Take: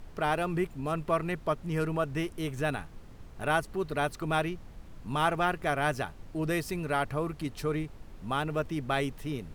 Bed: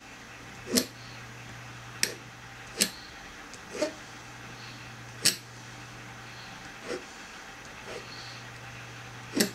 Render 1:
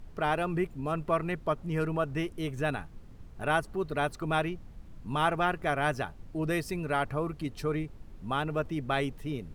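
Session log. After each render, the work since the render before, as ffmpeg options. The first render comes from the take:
ffmpeg -i in.wav -af "afftdn=noise_reduction=6:noise_floor=-48" out.wav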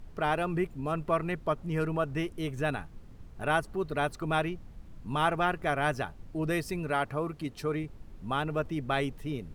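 ffmpeg -i in.wav -filter_complex "[0:a]asettb=1/sr,asplit=3[link_01][link_02][link_03];[link_01]atrim=end=6.904[link_04];[link_02]atrim=start=6.9:end=7.84,asetpts=PTS-STARTPTS,afade=type=in:duration=0.004:curve=qsin,afade=type=out:start_time=0.936:duration=0.004:curve=qsin,lowshelf=frequency=72:gain=-10.5[link_05];[link_03]atrim=start=7.836[link_06];[link_04][link_05]acrossfade=duration=0.004:curve1=hsin:curve2=qsin[link_07];[link_07][link_06]acrossfade=duration=0.004:curve1=qsin:curve2=hsin" out.wav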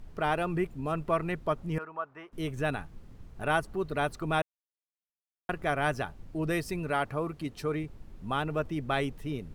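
ffmpeg -i in.wav -filter_complex "[0:a]asettb=1/sr,asplit=3[link_01][link_02][link_03];[link_01]atrim=end=1.784[link_04];[link_02]atrim=start=1.78:end=2.33,asetpts=PTS-STARTPTS,afade=type=in:duration=0.004:curve=qsin,afade=type=out:start_time=0.546:duration=0.004:curve=qsin,bandpass=frequency=1100:width_type=q:width=2.2[link_05];[link_03]atrim=start=2.326[link_06];[link_04][link_05]acrossfade=duration=0.004:curve1=hsin:curve2=qsin[link_07];[link_07][link_06]acrossfade=duration=0.004:curve1=qsin:curve2=hsin,asplit=3[link_08][link_09][link_10];[link_08]atrim=end=4.42,asetpts=PTS-STARTPTS,afade=type=out:start_time=4.416:duration=0.004:curve=hsin[link_11];[link_09]atrim=start=4.42:end=5.49,asetpts=PTS-STARTPTS,volume=0[link_12];[link_10]atrim=start=5.49,asetpts=PTS-STARTPTS,afade=type=in:duration=0.004:curve=hsin[link_13];[link_11][link_12][link_13]concat=n=3:v=0:a=1" out.wav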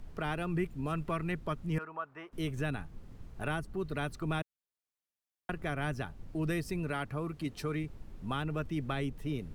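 ffmpeg -i in.wav -filter_complex "[0:a]acrossover=split=330|1200[link_01][link_02][link_03];[link_02]acompressor=threshold=-42dB:ratio=6[link_04];[link_03]alimiter=level_in=5dB:limit=-24dB:level=0:latency=1:release=473,volume=-5dB[link_05];[link_01][link_04][link_05]amix=inputs=3:normalize=0" out.wav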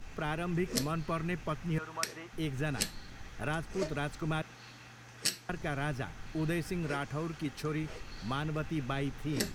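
ffmpeg -i in.wav -i bed.wav -filter_complex "[1:a]volume=-8dB[link_01];[0:a][link_01]amix=inputs=2:normalize=0" out.wav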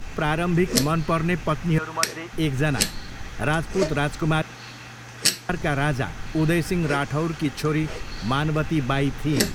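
ffmpeg -i in.wav -af "volume=12dB,alimiter=limit=-1dB:level=0:latency=1" out.wav

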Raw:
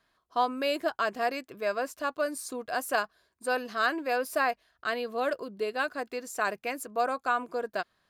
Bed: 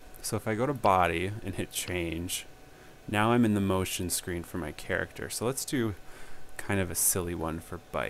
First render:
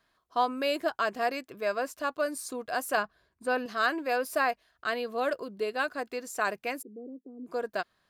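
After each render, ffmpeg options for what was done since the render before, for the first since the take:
ffmpeg -i in.wav -filter_complex "[0:a]asettb=1/sr,asplit=3[link_01][link_02][link_03];[link_01]atrim=end=2.974[link_04];[link_02]atrim=start=2.97:end=3.66,asetpts=PTS-STARTPTS,afade=type=in:duration=0.004:curve=qsin,afade=type=out:start_time=0.686:duration=0.004:curve=qsin,bass=frequency=250:gain=8,treble=frequency=4000:gain=-8[link_05];[link_03]atrim=start=3.656[link_06];[link_04][link_05]acrossfade=duration=0.004:curve1=hsin:curve2=qsin[link_07];[link_07][link_06]acrossfade=duration=0.004:curve1=qsin:curve2=hsin,asplit=3[link_08][link_09][link_10];[link_08]afade=type=out:start_time=6.81:duration=0.02[link_11];[link_09]asuperpass=centerf=290:order=8:qfactor=1.3,afade=type=in:start_time=6.81:duration=0.02,afade=type=out:start_time=7.46:duration=0.02[link_12];[link_10]afade=type=in:start_time=7.46:duration=0.02[link_13];[link_11][link_12][link_13]amix=inputs=3:normalize=0" out.wav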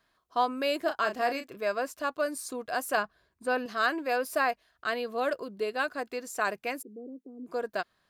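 ffmpeg -i in.wav -filter_complex "[0:a]asettb=1/sr,asplit=3[link_01][link_02][link_03];[link_01]atrim=end=0.844[link_04];[link_02]atrim=start=0.84:end=1.57,asetpts=PTS-STARTPTS,afade=type=in:duration=0.004:curve=qsin,afade=type=out:start_time=0.726:duration=0.004:curve=qsin,asplit=2[link_05][link_06];[link_06]adelay=33,volume=-8dB[link_07];[link_05][link_07]amix=inputs=2:normalize=0,atrim=end_sample=32193[link_08];[link_03]atrim=start=1.566[link_09];[link_04][link_08]acrossfade=duration=0.004:curve1=hsin:curve2=qsin[link_10];[link_10][link_09]acrossfade=duration=0.004:curve1=qsin:curve2=hsin" out.wav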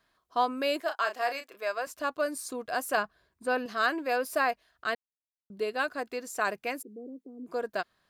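ffmpeg -i in.wav -filter_complex "[0:a]asettb=1/sr,asplit=3[link_01][link_02][link_03];[link_01]atrim=end=0.804[link_04];[link_02]atrim=start=0.8:end=1.87,asetpts=PTS-STARTPTS,afade=type=in:duration=0.004:curve=qsin,afade=type=out:start_time=1.066:duration=0.004:curve=qsin,highpass=580[link_05];[link_03]atrim=start=1.866[link_06];[link_04][link_05]acrossfade=duration=0.004:curve1=hsin:curve2=qsin[link_07];[link_07][link_06]acrossfade=duration=0.004:curve1=qsin:curve2=hsin,asplit=3[link_08][link_09][link_10];[link_08]atrim=end=4.95,asetpts=PTS-STARTPTS,afade=type=out:start_time=4.946:duration=0.004:curve=hsin[link_11];[link_09]atrim=start=4.95:end=5.5,asetpts=PTS-STARTPTS,volume=0[link_12];[link_10]atrim=start=5.5,asetpts=PTS-STARTPTS,afade=type=in:duration=0.004:curve=hsin[link_13];[link_11][link_12][link_13]concat=n=3:v=0:a=1" out.wav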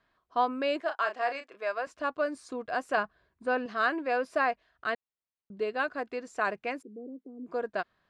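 ffmpeg -i in.wav -af "lowpass=frequency=8300:width=0.5412,lowpass=frequency=8300:width=1.3066,bass=frequency=250:gain=1,treble=frequency=4000:gain=-12" out.wav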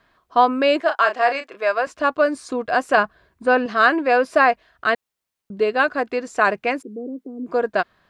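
ffmpeg -i in.wav -af "volume=12dB,alimiter=limit=-3dB:level=0:latency=1" out.wav

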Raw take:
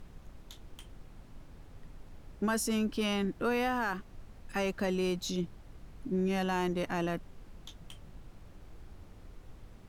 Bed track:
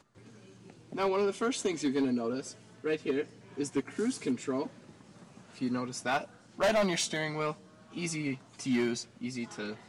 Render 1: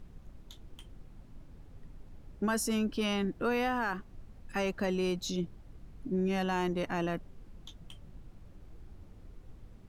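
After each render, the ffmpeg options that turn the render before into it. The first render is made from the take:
ffmpeg -i in.wav -af "afftdn=noise_reduction=6:noise_floor=-54" out.wav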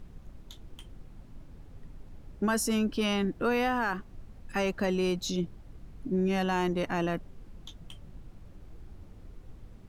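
ffmpeg -i in.wav -af "volume=3dB" out.wav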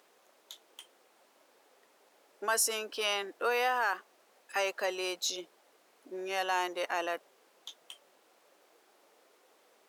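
ffmpeg -i in.wav -af "highpass=frequency=470:width=0.5412,highpass=frequency=470:width=1.3066,highshelf=frequency=4500:gain=5.5" out.wav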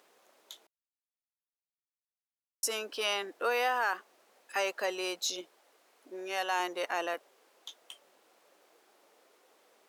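ffmpeg -i in.wav -filter_complex "[0:a]asettb=1/sr,asplit=3[link_01][link_02][link_03];[link_01]atrim=end=5.414[link_04];[link_02]atrim=start=5.41:end=6.6,asetpts=PTS-STARTPTS,afade=type=in:duration=0.004:curve=qsin,afade=type=out:start_time=1.186:duration=0.004:curve=qsin,highpass=frequency=310:poles=1[link_05];[link_03]atrim=start=6.596[link_06];[link_04][link_05]acrossfade=duration=0.004:curve1=hsin:curve2=qsin[link_07];[link_07][link_06]acrossfade=duration=0.004:curve1=qsin:curve2=hsin,asettb=1/sr,asplit=3[link_08][link_09][link_10];[link_08]atrim=end=7.144[link_11];[link_09]atrim=start=7.14:end=7.91,asetpts=PTS-STARTPTS,afade=type=in:duration=0.004:curve=qsin,afade=type=out:start_time=0.766:duration=0.004:curve=qsin,highpass=230[link_12];[link_10]atrim=start=7.906[link_13];[link_11][link_12]acrossfade=duration=0.004:curve1=hsin:curve2=qsin[link_14];[link_14][link_13]acrossfade=duration=0.004:curve1=qsin:curve2=hsin,asplit=3[link_15][link_16][link_17];[link_15]atrim=end=0.67,asetpts=PTS-STARTPTS,afade=type=out:start_time=0.666:duration=0.004:curve=hsin[link_18];[link_16]atrim=start=0.67:end=2.63,asetpts=PTS-STARTPTS,volume=0[link_19];[link_17]atrim=start=2.63,asetpts=PTS-STARTPTS,afade=type=in:duration=0.004:curve=hsin[link_20];[link_18][link_19][link_20]concat=n=3:v=0:a=1" out.wav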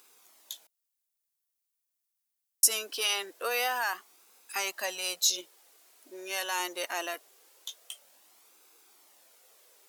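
ffmpeg -i in.wav -af "flanger=delay=0.8:depth=2.6:regen=-43:speed=0.23:shape=sinusoidal,crystalizer=i=4.5:c=0" out.wav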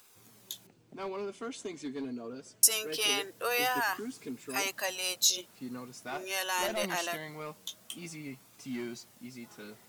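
ffmpeg -i in.wav -i bed.wav -filter_complex "[1:a]volume=-9dB[link_01];[0:a][link_01]amix=inputs=2:normalize=0" out.wav

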